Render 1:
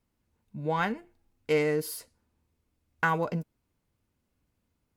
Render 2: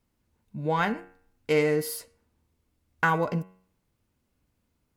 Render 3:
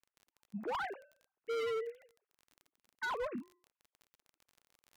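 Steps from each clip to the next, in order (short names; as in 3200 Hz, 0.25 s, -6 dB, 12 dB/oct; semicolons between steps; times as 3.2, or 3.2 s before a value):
de-hum 93.02 Hz, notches 33; gain +3 dB
sine-wave speech; crackle 29/s -40 dBFS; hard clip -27.5 dBFS, distortion -6 dB; gain -6.5 dB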